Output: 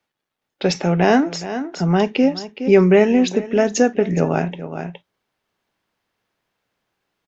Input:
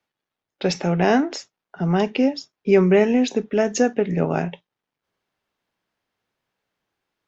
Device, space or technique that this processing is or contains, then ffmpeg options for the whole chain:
ducked delay: -filter_complex "[0:a]asplit=3[link_01][link_02][link_03];[link_02]adelay=417,volume=-4dB[link_04];[link_03]apad=whole_len=339064[link_05];[link_04][link_05]sidechaincompress=threshold=-28dB:ratio=10:attack=5.2:release=566[link_06];[link_01][link_06]amix=inputs=2:normalize=0,volume=3dB"

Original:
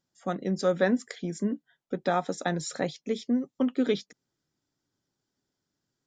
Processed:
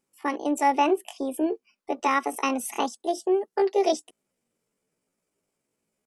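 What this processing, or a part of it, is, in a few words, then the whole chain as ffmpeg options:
chipmunk voice: -filter_complex "[0:a]asettb=1/sr,asplit=3[link_01][link_02][link_03];[link_01]atrim=end=0.764[link_04];[link_02]atrim=start=0.76:end=1.22,asetpts=PTS-STARTPTS,afade=type=in:duration=0.004:curve=qsin,afade=type=out:start_time=0.456:duration=0.004:curve=qsin,equalizer=frequency=3200:width_type=o:width=2.6:gain=-5[link_05];[link_03]atrim=start=1.216[link_06];[link_04][link_05]acrossfade=duration=0.004:curve1=hsin:curve2=qsin[link_07];[link_07][link_06]acrossfade=duration=0.004:curve1=qsin:curve2=hsin,asetrate=68011,aresample=44100,atempo=0.64842,volume=3dB"

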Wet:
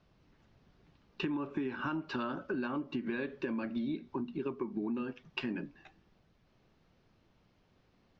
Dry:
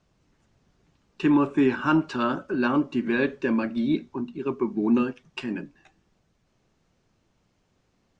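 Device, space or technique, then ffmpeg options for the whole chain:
serial compression, leveller first: -af "lowpass=frequency=5000:width=0.5412,lowpass=frequency=5000:width=1.3066,acompressor=threshold=-24dB:ratio=2.5,acompressor=threshold=-33dB:ratio=6"

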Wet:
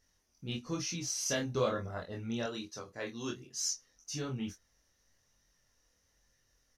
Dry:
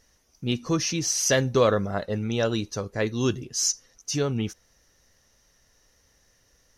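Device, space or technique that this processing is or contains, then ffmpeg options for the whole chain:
double-tracked vocal: -filter_complex "[0:a]asplit=2[link_01][link_02];[link_02]adelay=22,volume=-6dB[link_03];[link_01][link_03]amix=inputs=2:normalize=0,flanger=delay=22.5:depth=3.8:speed=1.1,asettb=1/sr,asplit=3[link_04][link_05][link_06];[link_04]atrim=end=0.744[link_07];[link_05]atrim=start=0.74:end=1.76,asetpts=PTS-STARTPTS,afade=type=in:duration=0.004:curve=qsin,afade=type=out:start_time=1.016:duration=0.004:curve=qsin,bandreject=frequency=1800:width=10[link_08];[link_06]atrim=start=1.756[link_09];[link_07][link_08]acrossfade=duration=0.004:curve1=hsin:curve2=qsin[link_10];[link_10][link_09]acrossfade=duration=0.004:curve1=qsin:curve2=hsin,asettb=1/sr,asplit=3[link_11][link_12][link_13];[link_11]atrim=end=2.464[link_14];[link_12]atrim=start=2.46:end=3.71,asetpts=PTS-STARTPTS,afade=type=in:duration=0.004:curve=qsin,afade=type=out:start_time=1.246:duration=0.004:curve=qsin,highpass=frequency=290:poles=1[link_15];[link_13]atrim=start=3.706[link_16];[link_14][link_15]acrossfade=duration=0.004:curve1=hsin:curve2=qsin[link_17];[link_17][link_16]acrossfade=duration=0.004:curve1=qsin:curve2=hsin,equalizer=frequency=480:width_type=o:width=0.77:gain=-2.5,volume=-8dB"

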